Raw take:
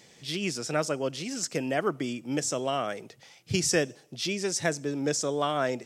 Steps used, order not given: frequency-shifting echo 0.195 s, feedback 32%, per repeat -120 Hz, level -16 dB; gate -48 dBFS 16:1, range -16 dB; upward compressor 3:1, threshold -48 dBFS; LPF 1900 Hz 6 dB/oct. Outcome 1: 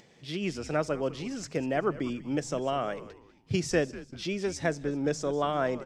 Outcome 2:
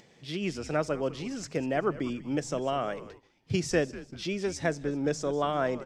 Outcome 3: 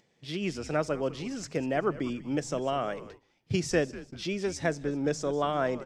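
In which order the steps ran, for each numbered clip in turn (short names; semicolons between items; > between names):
LPF > gate > upward compressor > frequency-shifting echo; frequency-shifting echo > gate > LPF > upward compressor; LPF > upward compressor > frequency-shifting echo > gate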